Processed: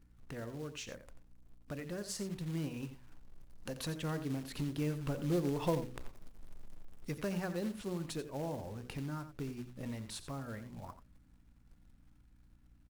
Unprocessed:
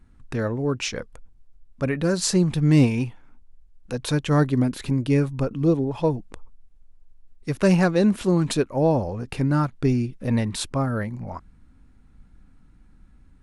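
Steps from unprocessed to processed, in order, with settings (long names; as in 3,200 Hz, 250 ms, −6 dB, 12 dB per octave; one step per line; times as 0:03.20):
source passing by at 0:05.90, 7 m/s, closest 1.9 metres
mains-hum notches 60/120/180/240/300/360/420/480/540/600 Hz
downward compressor 2.5 to 1, threshold −58 dBFS, peak gain reduction 25 dB
floating-point word with a short mantissa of 2 bits
single-tap delay 91 ms −12 dB
wrong playback speed 24 fps film run at 25 fps
mains hum 60 Hz, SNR 26 dB
level +14.5 dB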